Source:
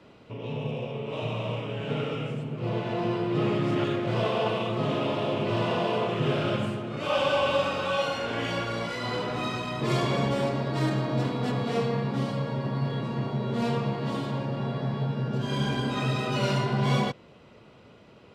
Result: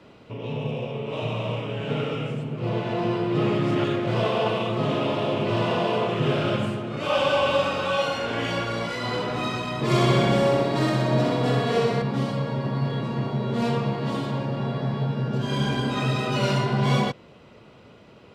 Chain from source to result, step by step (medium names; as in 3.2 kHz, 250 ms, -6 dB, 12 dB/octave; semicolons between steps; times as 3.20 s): 9.85–12.02 s: flutter echo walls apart 10.8 m, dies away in 1.2 s; trim +3 dB